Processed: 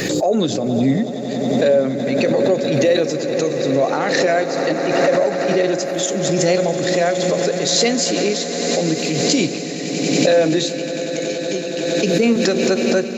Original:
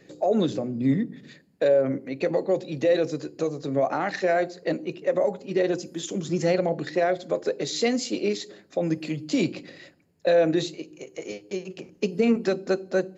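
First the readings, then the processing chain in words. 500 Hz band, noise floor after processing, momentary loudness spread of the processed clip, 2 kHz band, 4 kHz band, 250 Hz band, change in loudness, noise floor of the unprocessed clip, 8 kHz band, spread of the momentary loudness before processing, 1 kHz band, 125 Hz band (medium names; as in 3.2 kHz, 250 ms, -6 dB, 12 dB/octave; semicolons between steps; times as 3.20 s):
+7.5 dB, -25 dBFS, 7 LU, +10.0 dB, +14.0 dB, +8.0 dB, +8.0 dB, -58 dBFS, no reading, 12 LU, +8.0 dB, +8.5 dB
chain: treble shelf 4.2 kHz +11.5 dB; echo with a slow build-up 93 ms, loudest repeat 8, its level -16.5 dB; swell ahead of each attack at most 27 dB/s; trim +4.5 dB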